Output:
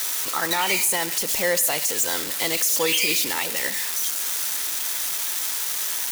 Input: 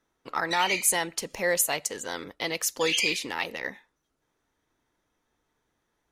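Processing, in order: switching spikes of -19 dBFS; limiter -16.5 dBFS, peak gain reduction 8 dB; on a send: reverb RT60 1.2 s, pre-delay 49 ms, DRR 15 dB; on the sum: gain +3.5 dB

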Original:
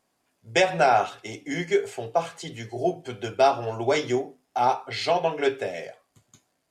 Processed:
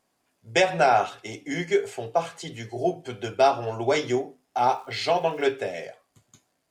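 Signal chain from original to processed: 4.64–5.5 crackle 550/s -47 dBFS

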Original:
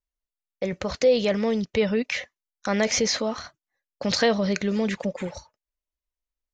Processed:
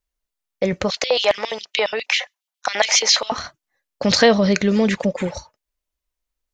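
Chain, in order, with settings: 0.9–3.32 LFO high-pass square 7.3 Hz 800–3000 Hz; gain +7.5 dB

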